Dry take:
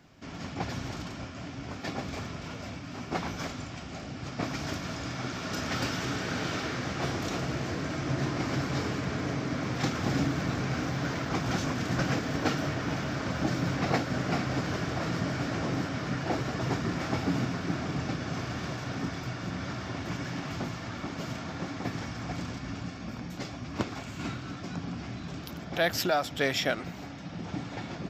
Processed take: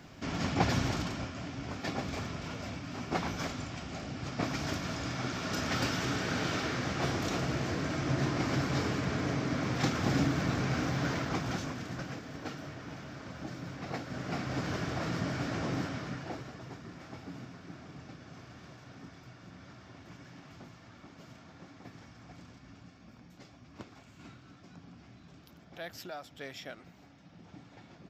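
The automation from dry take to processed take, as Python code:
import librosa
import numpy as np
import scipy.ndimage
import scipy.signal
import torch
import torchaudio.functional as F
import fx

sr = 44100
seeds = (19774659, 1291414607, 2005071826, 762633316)

y = fx.gain(x, sr, db=fx.line((0.78, 6.0), (1.43, -0.5), (11.15, -0.5), (12.12, -12.5), (13.79, -12.5), (14.67, -3.0), (15.85, -3.0), (16.69, -16.0)))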